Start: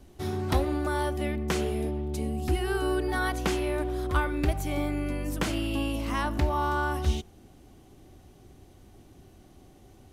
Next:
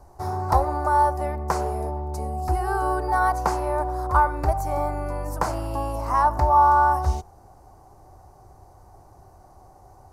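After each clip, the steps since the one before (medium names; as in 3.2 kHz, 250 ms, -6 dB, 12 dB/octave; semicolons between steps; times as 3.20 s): FFT filter 110 Hz 0 dB, 250 Hz -12 dB, 910 Hz +13 dB, 3.3 kHz -21 dB, 4.7 kHz -3 dB; trim +3 dB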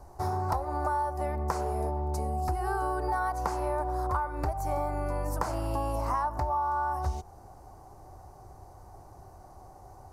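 compression 12:1, threshold -26 dBFS, peak gain reduction 14 dB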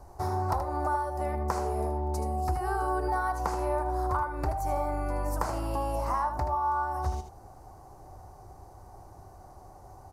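delay 78 ms -8.5 dB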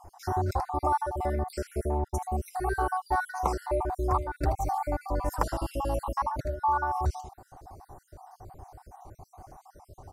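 random holes in the spectrogram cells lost 49%; trim +3.5 dB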